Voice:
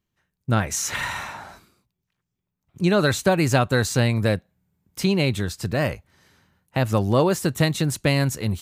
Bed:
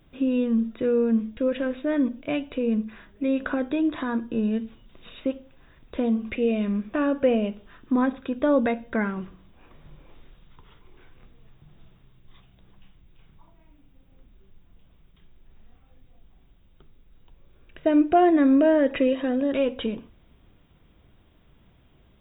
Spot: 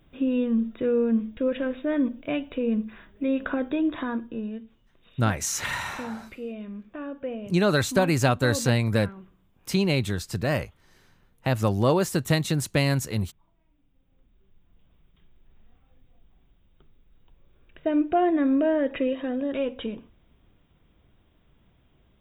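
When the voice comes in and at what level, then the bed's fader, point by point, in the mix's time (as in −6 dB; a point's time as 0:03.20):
4.70 s, −2.5 dB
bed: 0:04.04 −1 dB
0:04.67 −12 dB
0:13.72 −12 dB
0:14.95 −4 dB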